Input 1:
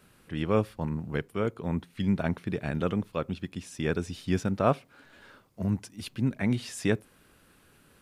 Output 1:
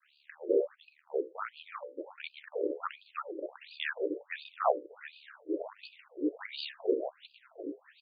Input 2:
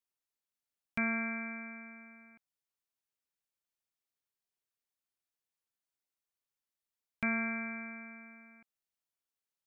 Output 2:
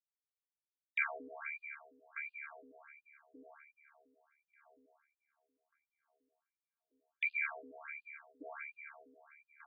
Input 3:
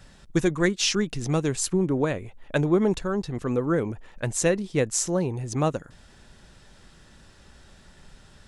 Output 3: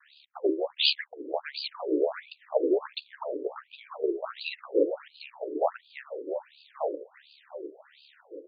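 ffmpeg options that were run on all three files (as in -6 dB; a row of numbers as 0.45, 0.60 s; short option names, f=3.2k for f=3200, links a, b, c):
-filter_complex "[0:a]agate=range=-33dB:threshold=-56dB:ratio=3:detection=peak,bandreject=f=60:t=h:w=6,bandreject=f=120:t=h:w=6,bandreject=f=180:t=h:w=6,bandreject=f=240:t=h:w=6,bandreject=f=300:t=h:w=6,bandreject=f=360:t=h:w=6,bandreject=f=420:t=h:w=6,bandreject=f=480:t=h:w=6,bandreject=f=540:t=h:w=6,aeval=exprs='val(0)*sin(2*PI*36*n/s)':c=same,acrossover=split=290|3000[a][b][c];[a]acompressor=threshold=-35dB:ratio=6[d];[d][b][c]amix=inputs=3:normalize=0,bass=f=250:g=13,treble=f=4k:g=11,asoftclip=type=tanh:threshold=-12dB,asplit=2[e][f];[f]adelay=1187,lowpass=f=1.1k:p=1,volume=-3.5dB,asplit=2[g][h];[h]adelay=1187,lowpass=f=1.1k:p=1,volume=0.45,asplit=2[i][j];[j]adelay=1187,lowpass=f=1.1k:p=1,volume=0.45,asplit=2[k][l];[l]adelay=1187,lowpass=f=1.1k:p=1,volume=0.45,asplit=2[m][n];[n]adelay=1187,lowpass=f=1.1k:p=1,volume=0.45,asplit=2[o][p];[p]adelay=1187,lowpass=f=1.1k:p=1,volume=0.45[q];[g][i][k][m][o][q]amix=inputs=6:normalize=0[r];[e][r]amix=inputs=2:normalize=0,afftfilt=real='re*between(b*sr/1024,400*pow(3500/400,0.5+0.5*sin(2*PI*1.4*pts/sr))/1.41,400*pow(3500/400,0.5+0.5*sin(2*PI*1.4*pts/sr))*1.41)':imag='im*between(b*sr/1024,400*pow(3500/400,0.5+0.5*sin(2*PI*1.4*pts/sr))/1.41,400*pow(3500/400,0.5+0.5*sin(2*PI*1.4*pts/sr))*1.41)':win_size=1024:overlap=0.75,volume=5dB"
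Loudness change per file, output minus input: -6.0, -5.0, -5.0 LU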